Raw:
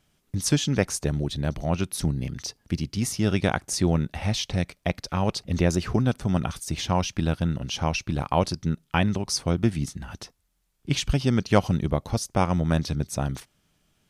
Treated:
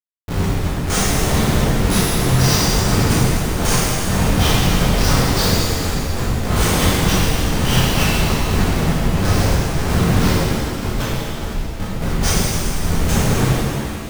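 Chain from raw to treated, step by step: spectral dilation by 0.12 s; negative-ratio compressor -26 dBFS, ratio -0.5; Schmitt trigger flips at -24 dBFS; shimmer reverb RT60 2.5 s, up +7 st, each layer -8 dB, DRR -10.5 dB; gain +2 dB

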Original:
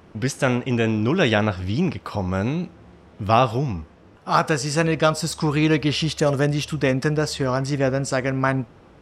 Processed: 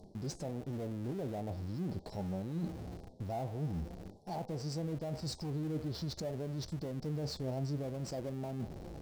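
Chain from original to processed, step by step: treble ducked by the level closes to 1500 Hz, closed at -14 dBFS; elliptic band-stop 790–4200 Hz, stop band 40 dB; limiter -18.5 dBFS, peak gain reduction 9 dB; reverse; compressor 10:1, threshold -38 dBFS, peak gain reduction 16 dB; reverse; flange 0.47 Hz, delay 4.7 ms, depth 3.1 ms, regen +66%; in parallel at -10 dB: Schmitt trigger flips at -51.5 dBFS; on the sum: gain +4.5 dB

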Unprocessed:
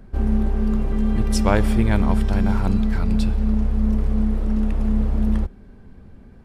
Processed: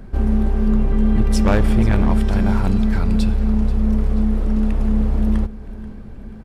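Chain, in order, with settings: 0.67–2.18 tone controls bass +2 dB, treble -4 dB; in parallel at -1.5 dB: compressor 10:1, threshold -31 dBFS, peak gain reduction 20 dB; on the sum: hard clip -10.5 dBFS, distortion -18 dB; feedback echo 0.484 s, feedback 51%, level -17 dB; gain +1.5 dB

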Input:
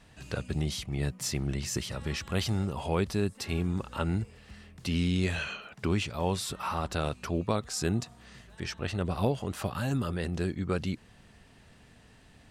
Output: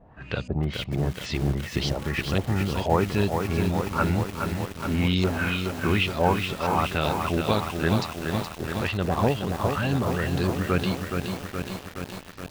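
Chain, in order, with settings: LFO low-pass saw up 2.1 Hz 580–6000 Hz; lo-fi delay 0.421 s, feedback 80%, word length 7-bit, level -5 dB; gain +4 dB

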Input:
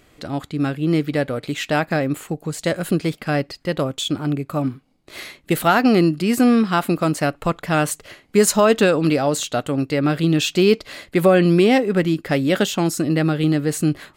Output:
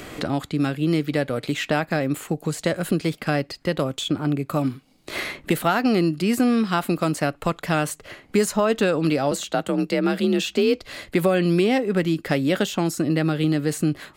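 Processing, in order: 9.31–10.81 frequency shift +42 Hz; three-band squash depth 70%; gain -3.5 dB

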